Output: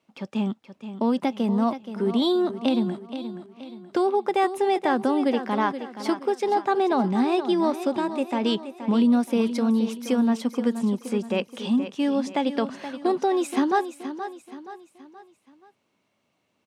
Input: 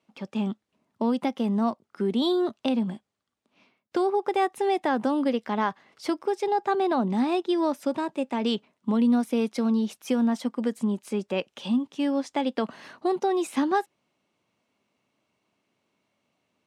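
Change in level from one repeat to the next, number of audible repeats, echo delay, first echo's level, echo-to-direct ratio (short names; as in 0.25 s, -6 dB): -7.5 dB, 4, 0.475 s, -11.0 dB, -10.0 dB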